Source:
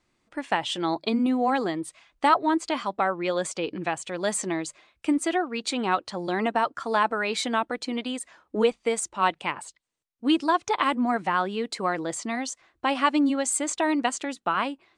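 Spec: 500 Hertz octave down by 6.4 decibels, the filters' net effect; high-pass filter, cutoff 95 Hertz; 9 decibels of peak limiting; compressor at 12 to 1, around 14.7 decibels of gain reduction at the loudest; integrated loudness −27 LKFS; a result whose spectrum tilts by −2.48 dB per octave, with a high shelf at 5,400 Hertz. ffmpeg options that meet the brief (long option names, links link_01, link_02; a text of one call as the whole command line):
ffmpeg -i in.wav -af "highpass=95,equalizer=frequency=500:width_type=o:gain=-8.5,highshelf=frequency=5400:gain=8.5,acompressor=threshold=-30dB:ratio=12,volume=8.5dB,alimiter=limit=-15.5dB:level=0:latency=1" out.wav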